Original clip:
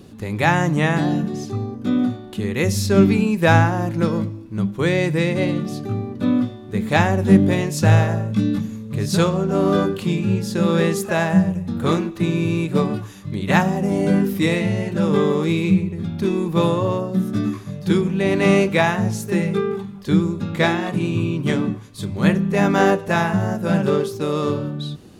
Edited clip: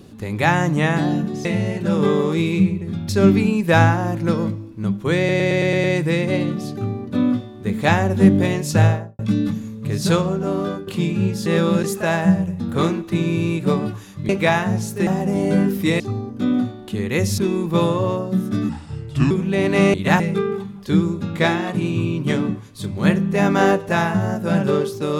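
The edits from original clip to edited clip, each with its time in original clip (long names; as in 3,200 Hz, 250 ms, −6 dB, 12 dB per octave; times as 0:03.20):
0:01.45–0:02.83: swap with 0:14.56–0:16.20
0:04.92: stutter 0.11 s, 7 plays
0:07.85–0:08.27: fade out and dull
0:09.30–0:09.95: fade out, to −13 dB
0:10.54–0:10.92: reverse
0:13.37–0:13.63: swap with 0:18.61–0:19.39
0:17.51–0:17.98: play speed 76%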